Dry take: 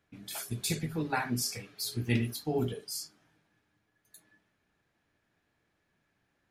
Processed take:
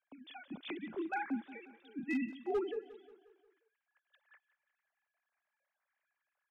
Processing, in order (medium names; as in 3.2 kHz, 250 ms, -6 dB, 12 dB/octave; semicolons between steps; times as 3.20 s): formants replaced by sine waves; overload inside the chain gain 22.5 dB; feedback delay 178 ms, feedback 52%, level -17 dB; trim -6 dB